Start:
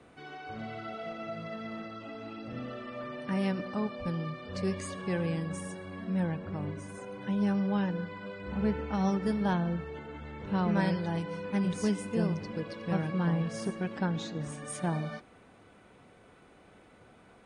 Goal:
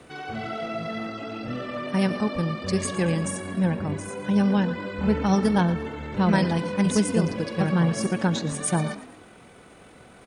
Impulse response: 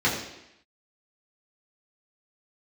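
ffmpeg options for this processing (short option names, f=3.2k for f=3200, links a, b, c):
-filter_complex "[0:a]aemphasis=mode=production:type=cd,asplit=5[a][b][c][d][e];[b]adelay=196,afreqshift=50,volume=-15dB[f];[c]adelay=392,afreqshift=100,volume=-22.1dB[g];[d]adelay=588,afreqshift=150,volume=-29.3dB[h];[e]adelay=784,afreqshift=200,volume=-36.4dB[i];[a][f][g][h][i]amix=inputs=5:normalize=0,atempo=1.7,volume=8.5dB"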